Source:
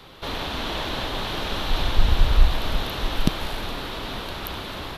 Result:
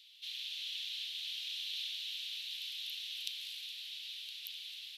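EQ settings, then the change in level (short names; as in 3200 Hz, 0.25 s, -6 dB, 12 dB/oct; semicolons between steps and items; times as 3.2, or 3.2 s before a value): steep high-pass 2800 Hz 36 dB/oct; high shelf 5200 Hz -8.5 dB; -4.0 dB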